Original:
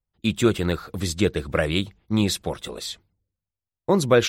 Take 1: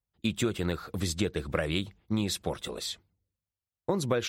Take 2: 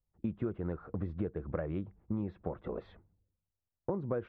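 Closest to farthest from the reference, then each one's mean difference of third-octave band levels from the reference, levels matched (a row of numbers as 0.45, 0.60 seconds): 1, 2; 3.0, 10.5 decibels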